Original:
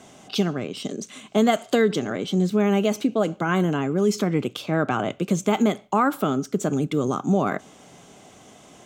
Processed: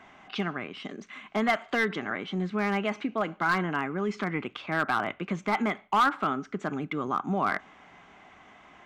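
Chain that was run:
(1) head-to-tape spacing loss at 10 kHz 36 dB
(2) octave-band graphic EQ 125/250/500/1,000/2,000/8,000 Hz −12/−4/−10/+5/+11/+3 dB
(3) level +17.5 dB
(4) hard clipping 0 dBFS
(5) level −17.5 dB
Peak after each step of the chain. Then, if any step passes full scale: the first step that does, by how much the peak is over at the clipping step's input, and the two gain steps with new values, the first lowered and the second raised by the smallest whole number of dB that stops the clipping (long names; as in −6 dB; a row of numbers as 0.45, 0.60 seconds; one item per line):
−9.0, −9.5, +8.0, 0.0, −17.5 dBFS
step 3, 8.0 dB
step 3 +9.5 dB, step 5 −9.5 dB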